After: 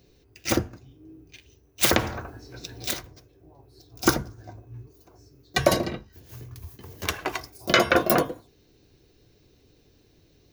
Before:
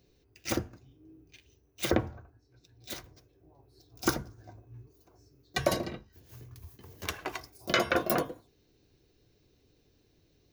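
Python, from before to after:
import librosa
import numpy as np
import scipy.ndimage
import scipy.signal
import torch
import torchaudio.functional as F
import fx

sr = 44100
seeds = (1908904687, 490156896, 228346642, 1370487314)

y = fx.spectral_comp(x, sr, ratio=2.0, at=(1.81, 2.91))
y = F.gain(torch.from_numpy(y), 7.5).numpy()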